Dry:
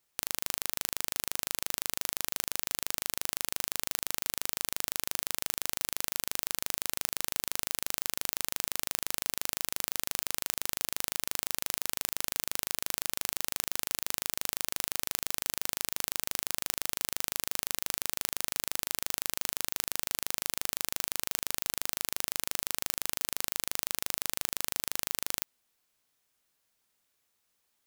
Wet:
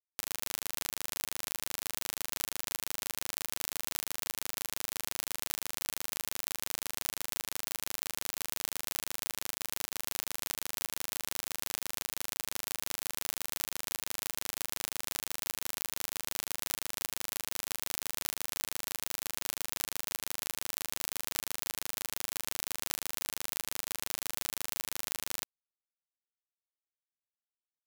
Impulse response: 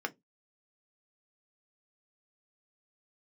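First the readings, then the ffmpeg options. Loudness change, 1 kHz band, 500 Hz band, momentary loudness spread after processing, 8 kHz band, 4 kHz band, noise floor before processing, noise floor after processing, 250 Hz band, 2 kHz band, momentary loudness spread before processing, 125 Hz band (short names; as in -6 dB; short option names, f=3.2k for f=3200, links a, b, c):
-3.5 dB, -3.0 dB, -3.0 dB, 1 LU, -3.0 dB, -3.0 dB, -77 dBFS, under -85 dBFS, -3.0 dB, -3.0 dB, 0 LU, -3.0 dB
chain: -af "flanger=delay=9.6:depth=1.1:regen=-3:speed=0.41:shape=sinusoidal,acrusher=bits=3:mix=0:aa=0.000001"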